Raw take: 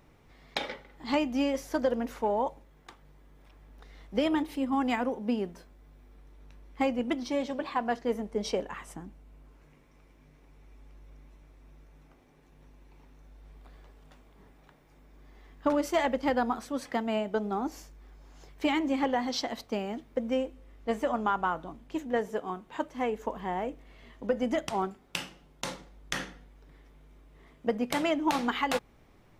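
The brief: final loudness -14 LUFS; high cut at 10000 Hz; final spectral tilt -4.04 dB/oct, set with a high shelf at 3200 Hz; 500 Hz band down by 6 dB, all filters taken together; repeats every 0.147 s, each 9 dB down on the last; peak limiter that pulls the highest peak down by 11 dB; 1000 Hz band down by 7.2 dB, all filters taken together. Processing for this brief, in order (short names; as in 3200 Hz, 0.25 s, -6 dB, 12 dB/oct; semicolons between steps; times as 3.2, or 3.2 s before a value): LPF 10000 Hz; bell 500 Hz -5 dB; bell 1000 Hz -7 dB; high shelf 3200 Hz -5.5 dB; limiter -26.5 dBFS; feedback echo 0.147 s, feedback 35%, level -9 dB; gain +23 dB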